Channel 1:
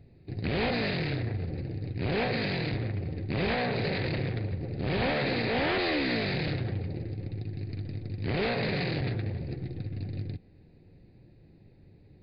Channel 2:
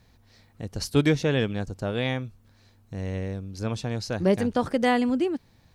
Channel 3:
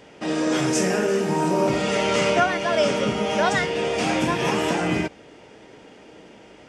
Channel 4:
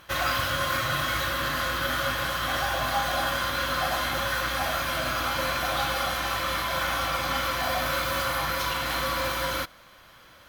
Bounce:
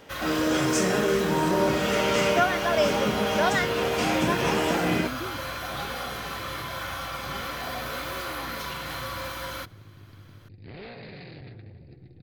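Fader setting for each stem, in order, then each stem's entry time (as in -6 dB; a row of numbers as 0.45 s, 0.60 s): -13.0 dB, -13.5 dB, -2.5 dB, -6.5 dB; 2.40 s, 0.00 s, 0.00 s, 0.00 s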